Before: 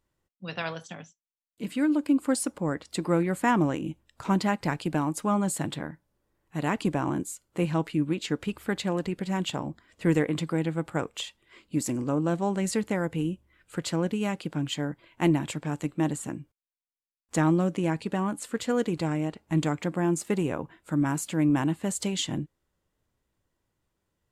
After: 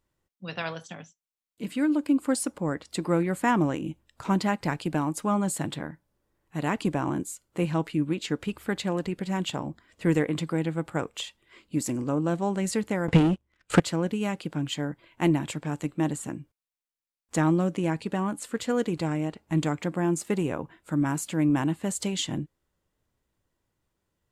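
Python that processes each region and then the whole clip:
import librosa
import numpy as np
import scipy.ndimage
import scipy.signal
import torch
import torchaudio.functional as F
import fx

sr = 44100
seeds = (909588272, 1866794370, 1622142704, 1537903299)

y = fx.chain(x, sr, fx.leveller(passes=3),
    fx.transient(attack_db=9, sustain_db=-4),
    fx.lowpass(hz=7500.0, slope=12), at=(13.08, 13.8))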